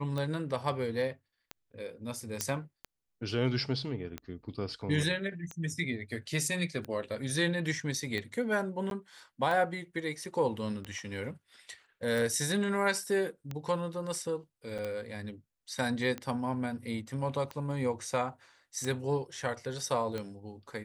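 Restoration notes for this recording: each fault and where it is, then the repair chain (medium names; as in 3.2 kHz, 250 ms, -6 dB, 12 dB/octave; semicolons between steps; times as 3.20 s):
tick 45 rpm -23 dBFS
2.41 s: pop -13 dBFS
8.90–8.91 s: dropout 12 ms
14.78–14.79 s: dropout 6.8 ms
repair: de-click; interpolate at 8.90 s, 12 ms; interpolate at 14.78 s, 6.8 ms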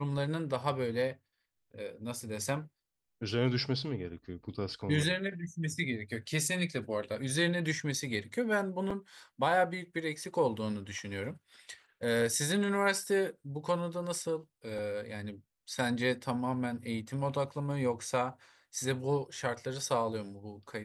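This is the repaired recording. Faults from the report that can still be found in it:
2.41 s: pop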